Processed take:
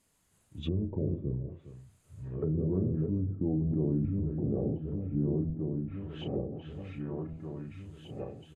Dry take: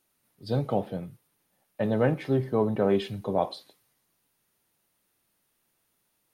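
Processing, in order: backward echo that repeats 679 ms, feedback 55%, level -6 dB; bass shelf 240 Hz +9.5 dB; doubling 24 ms -7 dB; echo from a far wall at 52 m, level -20 dB; in parallel at -0.5 dB: compressor with a negative ratio -24 dBFS, ratio -0.5; on the sum: speed mistake 45 rpm record played at 33 rpm; low-pass that closes with the level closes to 340 Hz, closed at -18 dBFS; dynamic bell 100 Hz, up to -7 dB, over -34 dBFS, Q 1.1; trim -8 dB

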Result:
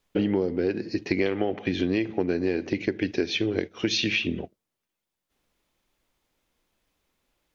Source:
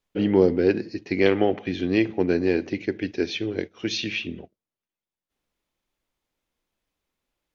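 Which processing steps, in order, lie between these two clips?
compression 10:1, threshold -28 dBFS, peak gain reduction 16.5 dB; trim +7 dB

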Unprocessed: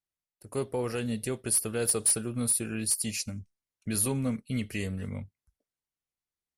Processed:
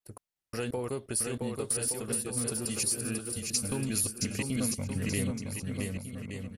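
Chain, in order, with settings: slices played last to first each 177 ms, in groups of 3; compression, threshold -31 dBFS, peak gain reduction 10 dB; dynamic bell 6.4 kHz, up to +6 dB, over -47 dBFS, Q 0.85; gain riding 2 s; bouncing-ball echo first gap 670 ms, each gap 0.75×, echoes 5

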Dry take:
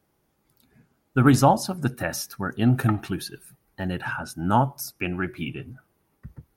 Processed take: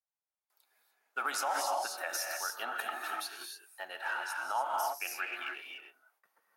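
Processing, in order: gated-style reverb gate 320 ms rising, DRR 1 dB; gate with hold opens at -52 dBFS; in parallel at -8.5 dB: crossover distortion -34.5 dBFS; on the sum: high-pass 650 Hz 24 dB/octave; peak limiter -16 dBFS, peak gain reduction 11 dB; trim -7.5 dB

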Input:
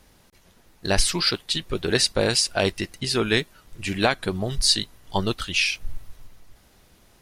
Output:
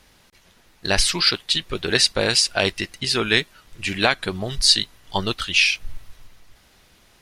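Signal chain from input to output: peaking EQ 2.8 kHz +7 dB 2.9 oct; trim -1.5 dB

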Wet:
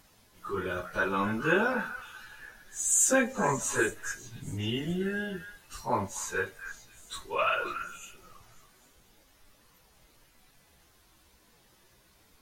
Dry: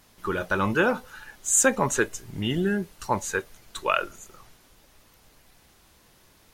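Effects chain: repeats whose band climbs or falls 144 ms, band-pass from 1.6 kHz, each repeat 1.4 oct, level -7.5 dB; plain phase-vocoder stretch 1.9×; trim -2 dB

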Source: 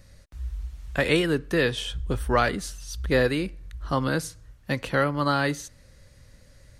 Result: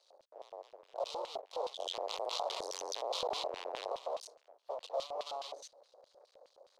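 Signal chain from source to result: valve stage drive 21 dB, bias 0.45; tilt EQ -4.5 dB/octave; hard clipper -32.5 dBFS, distortion -2 dB; FFT filter 1.1 kHz 0 dB, 1.9 kHz -28 dB, 4 kHz +7 dB, 6.3 kHz +10 dB; crossover distortion -54.5 dBFS; steep high-pass 460 Hz 36 dB/octave; LFO band-pass square 4.8 Hz 660–3000 Hz; 1.79–3.93 s: level flattener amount 70%; trim +7.5 dB

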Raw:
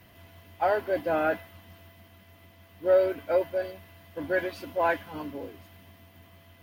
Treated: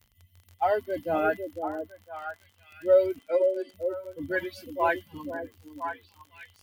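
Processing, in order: expander on every frequency bin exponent 2; 3.19–3.74 s: elliptic band-pass 250–9000 Hz; crackle 44 per s -43 dBFS; repeats whose band climbs or falls 504 ms, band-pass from 410 Hz, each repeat 1.4 oct, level -3 dB; trim +3 dB

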